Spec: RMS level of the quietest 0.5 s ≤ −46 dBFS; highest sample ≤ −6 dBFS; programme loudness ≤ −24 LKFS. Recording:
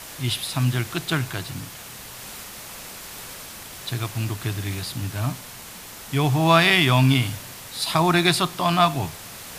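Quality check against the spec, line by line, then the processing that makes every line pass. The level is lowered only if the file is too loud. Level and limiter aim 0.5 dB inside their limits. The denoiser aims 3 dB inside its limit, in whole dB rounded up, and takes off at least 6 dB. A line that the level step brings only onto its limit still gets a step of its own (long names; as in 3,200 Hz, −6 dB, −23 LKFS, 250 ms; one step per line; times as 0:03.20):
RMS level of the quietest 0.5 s −40 dBFS: out of spec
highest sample −3.5 dBFS: out of spec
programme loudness −22.0 LKFS: out of spec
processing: broadband denoise 7 dB, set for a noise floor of −40 dBFS
level −2.5 dB
brickwall limiter −6.5 dBFS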